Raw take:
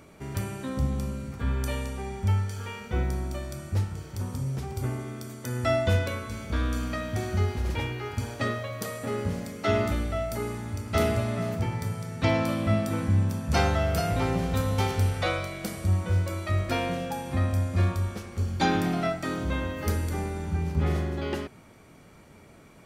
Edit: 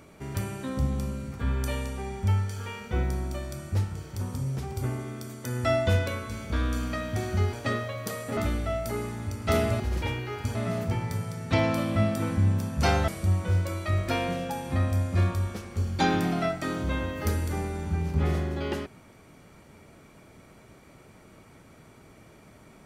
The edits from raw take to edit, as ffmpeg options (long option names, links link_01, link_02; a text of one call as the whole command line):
ffmpeg -i in.wav -filter_complex "[0:a]asplit=6[link_01][link_02][link_03][link_04][link_05][link_06];[link_01]atrim=end=7.532[link_07];[link_02]atrim=start=8.278:end=9.122[link_08];[link_03]atrim=start=9.828:end=11.262[link_09];[link_04]atrim=start=7.528:end=8.282[link_10];[link_05]atrim=start=11.258:end=13.792[link_11];[link_06]atrim=start=15.688[link_12];[link_07][link_08]acrossfade=duration=0.004:curve1=hsin:curve2=hsin[link_13];[link_13][link_09]acrossfade=duration=0.004:curve1=hsin:curve2=hsin[link_14];[link_14][link_10]acrossfade=duration=0.004:curve1=hsin:curve2=hsin[link_15];[link_15][link_11]acrossfade=duration=0.004:curve1=hsin:curve2=hsin[link_16];[link_16][link_12]acrossfade=duration=0.004:curve1=hsin:curve2=hsin" out.wav